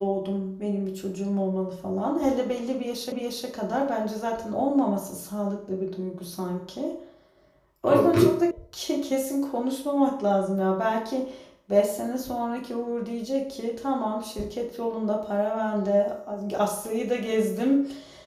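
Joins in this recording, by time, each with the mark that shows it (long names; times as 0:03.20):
0:03.12: the same again, the last 0.36 s
0:08.51: cut off before it has died away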